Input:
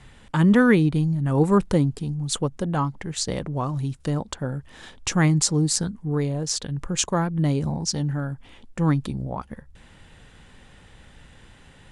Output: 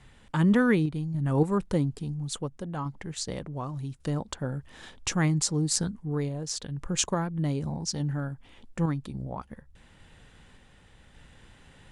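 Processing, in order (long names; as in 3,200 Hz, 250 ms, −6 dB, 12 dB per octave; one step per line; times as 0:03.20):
sample-and-hold tremolo
level −3 dB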